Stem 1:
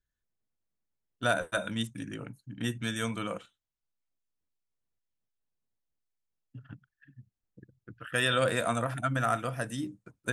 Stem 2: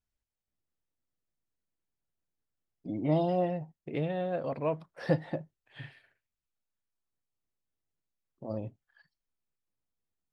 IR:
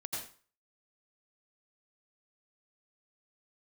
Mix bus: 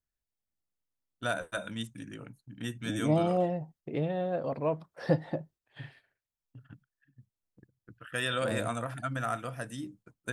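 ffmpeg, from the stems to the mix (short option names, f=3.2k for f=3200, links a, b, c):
-filter_complex "[0:a]volume=-4.5dB[a];[1:a]equalizer=f=2.4k:w=1.5:g=-4,volume=1dB[b];[a][b]amix=inputs=2:normalize=0,agate=range=-6dB:threshold=-57dB:ratio=16:detection=peak"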